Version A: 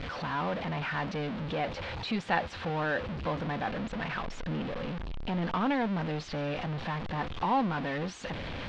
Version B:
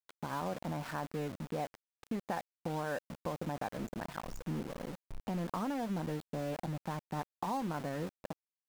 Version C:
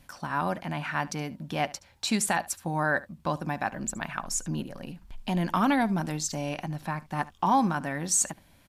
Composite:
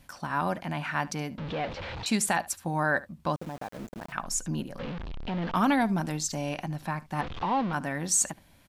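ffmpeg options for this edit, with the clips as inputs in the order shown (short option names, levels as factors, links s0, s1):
-filter_complex "[0:a]asplit=3[s0][s1][s2];[2:a]asplit=5[s3][s4][s5][s6][s7];[s3]atrim=end=1.382[s8];[s0]atrim=start=1.378:end=2.062[s9];[s4]atrim=start=2.058:end=3.362[s10];[1:a]atrim=start=3.358:end=4.122[s11];[s5]atrim=start=4.118:end=4.792[s12];[s1]atrim=start=4.788:end=5.552[s13];[s6]atrim=start=5.548:end=7.212[s14];[s2]atrim=start=7.208:end=7.732[s15];[s7]atrim=start=7.728[s16];[s8][s9]acrossfade=d=0.004:c1=hsin:c2=hsin[s17];[s17][s10]acrossfade=d=0.004:c1=hsin:c2=hsin[s18];[s18][s11]acrossfade=d=0.004:c1=hsin:c2=hsin[s19];[s19][s12]acrossfade=d=0.004:c1=hsin:c2=hsin[s20];[s20][s13]acrossfade=d=0.004:c1=hsin:c2=hsin[s21];[s21][s14]acrossfade=d=0.004:c1=hsin:c2=hsin[s22];[s22][s15]acrossfade=d=0.004:c1=hsin:c2=hsin[s23];[s23][s16]acrossfade=d=0.004:c1=hsin:c2=hsin"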